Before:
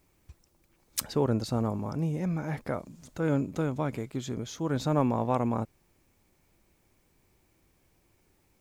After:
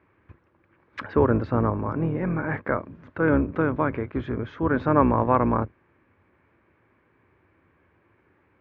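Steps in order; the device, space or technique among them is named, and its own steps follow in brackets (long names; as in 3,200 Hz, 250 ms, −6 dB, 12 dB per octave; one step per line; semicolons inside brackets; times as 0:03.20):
sub-octave bass pedal (sub-octave generator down 2 octaves, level +1 dB; loudspeaker in its box 85–2,300 Hz, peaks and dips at 140 Hz −8 dB, 200 Hz −6 dB, 740 Hz −5 dB, 1,100 Hz +5 dB, 1,600 Hz +7 dB)
level +7.5 dB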